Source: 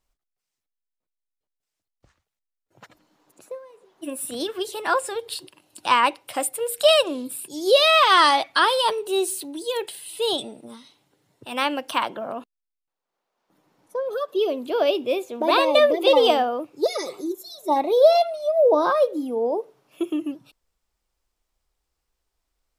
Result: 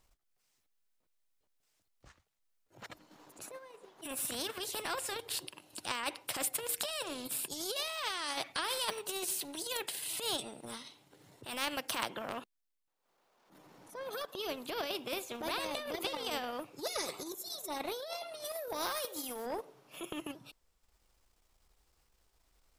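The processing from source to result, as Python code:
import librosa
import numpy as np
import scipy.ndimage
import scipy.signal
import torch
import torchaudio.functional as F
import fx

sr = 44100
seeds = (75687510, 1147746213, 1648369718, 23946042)

y = fx.riaa(x, sr, side='recording', at=(18.44, 19.45), fade=0.02)
y = fx.transient(y, sr, attack_db=-11, sustain_db=-7)
y = fx.over_compress(y, sr, threshold_db=-24.0, ratio=-1.0)
y = fx.spectral_comp(y, sr, ratio=2.0)
y = y * 10.0 ** (-6.0 / 20.0)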